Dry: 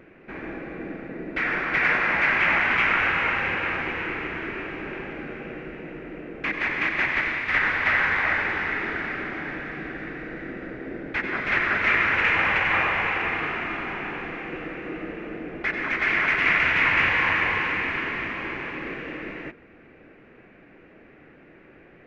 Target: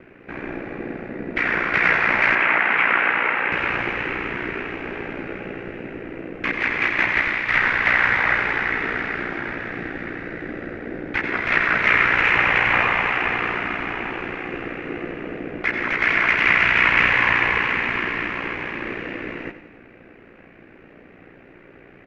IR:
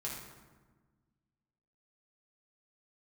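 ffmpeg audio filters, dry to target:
-filter_complex "[0:a]asettb=1/sr,asplit=3[link_01][link_02][link_03];[link_01]atrim=end=2.354[link_04];[link_02]atrim=start=2.35:end=3.52,asetpts=PTS-STARTPTS,afade=type=in:duration=0.004:curve=qsin,afade=type=out:start_time=1.166:duration=0.004:curve=qsin,acrossover=split=200 3100:gain=0.0891 1 0.2[link_05][link_06][link_07];[link_05][link_06][link_07]amix=inputs=3:normalize=0[link_08];[link_03]atrim=start=3.516[link_09];[link_04][link_08]acrossfade=duration=0.004:curve1=hsin:curve2=qsin[link_10];[link_10][link_09]acrossfade=duration=0.004:curve1=qsin:curve2=hsin,aeval=exprs='val(0)*sin(2*PI*30*n/s)':channel_layout=same,aecho=1:1:91|182|273|364|455|546:0.224|0.121|0.0653|0.0353|0.019|0.0103,volume=6.5dB"

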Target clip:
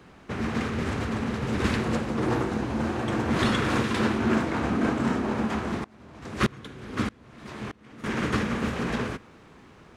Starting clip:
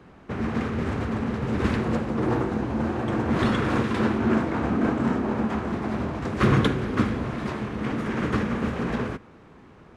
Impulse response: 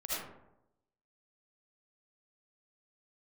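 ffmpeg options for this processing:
-filter_complex "[0:a]highshelf=frequency=2400:gain=10,asettb=1/sr,asplit=3[link_01][link_02][link_03];[link_01]atrim=end=5.844[link_04];[link_02]atrim=start=5.84:end=8.04,asetpts=PTS-STARTPTS,afade=type=in:duration=0.004:curve=qsin,afade=type=out:start_time=2.196:duration=0.004:curve=qsin,aeval=exprs='val(0)*pow(10,-28*if(lt(mod(-1.6*n/s,1),2*abs(-1.6)/1000),1-mod(-1.6*n/s,1)/(2*abs(-1.6)/1000),(mod(-1.6*n/s,1)-2*abs(-1.6)/1000)/(1-2*abs(-1.6)/1000))/20)':channel_layout=same[link_05];[link_03]atrim=start=8.036[link_06];[link_04][link_05]acrossfade=duration=0.004:curve1=hsin:curve2=qsin[link_07];[link_07][link_06]acrossfade=duration=0.004:curve1=qsin:curve2=hsin,volume=-2dB"

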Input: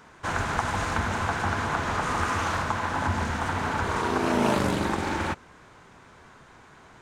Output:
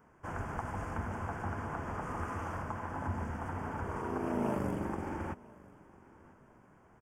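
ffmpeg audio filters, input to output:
ffmpeg -i in.wav -af "asuperstop=centerf=3900:order=4:qfactor=2.6,equalizer=frequency=4400:width=0.39:gain=-14.5,aecho=1:1:998|1996:0.0708|0.0262,volume=-8dB" out.wav

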